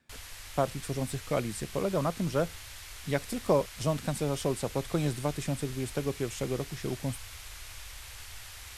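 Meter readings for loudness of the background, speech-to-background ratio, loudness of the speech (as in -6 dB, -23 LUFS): -44.0 LUFS, 11.5 dB, -32.5 LUFS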